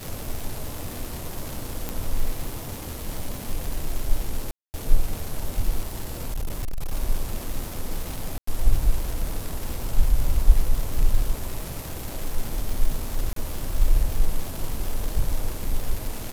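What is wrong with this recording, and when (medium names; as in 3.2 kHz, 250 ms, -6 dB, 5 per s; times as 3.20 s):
crackle 340 per s -28 dBFS
1.89 s: pop
4.51–4.74 s: dropout 229 ms
5.83–6.93 s: clipped -23 dBFS
8.38–8.47 s: dropout 94 ms
13.33–13.36 s: dropout 33 ms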